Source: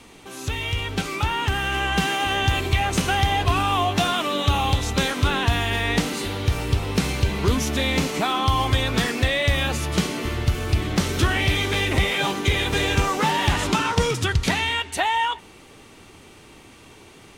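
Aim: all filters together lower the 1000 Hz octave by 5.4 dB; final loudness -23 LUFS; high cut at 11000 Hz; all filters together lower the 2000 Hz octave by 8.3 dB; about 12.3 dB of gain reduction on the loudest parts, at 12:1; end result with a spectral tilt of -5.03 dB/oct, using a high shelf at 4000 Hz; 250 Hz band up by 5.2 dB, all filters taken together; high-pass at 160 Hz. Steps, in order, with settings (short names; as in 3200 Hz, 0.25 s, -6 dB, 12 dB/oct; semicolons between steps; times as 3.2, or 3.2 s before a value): HPF 160 Hz; LPF 11000 Hz; bell 250 Hz +8.5 dB; bell 1000 Hz -5.5 dB; bell 2000 Hz -8 dB; high shelf 4000 Hz -5 dB; compressor 12:1, threshold -26 dBFS; gain +7.5 dB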